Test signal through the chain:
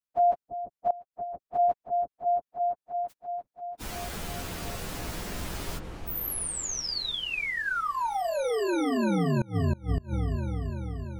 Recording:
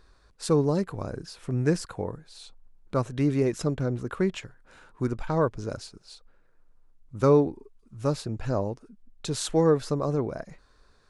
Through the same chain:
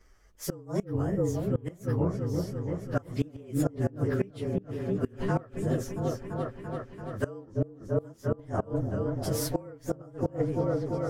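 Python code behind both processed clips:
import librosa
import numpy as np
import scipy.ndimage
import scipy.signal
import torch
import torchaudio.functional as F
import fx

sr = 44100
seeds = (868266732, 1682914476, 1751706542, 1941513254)

y = fx.partial_stretch(x, sr, pct=110)
y = fx.echo_opening(y, sr, ms=339, hz=400, octaves=1, feedback_pct=70, wet_db=-3)
y = fx.gate_flip(y, sr, shuts_db=-17.0, range_db=-24)
y = y * librosa.db_to_amplitude(1.5)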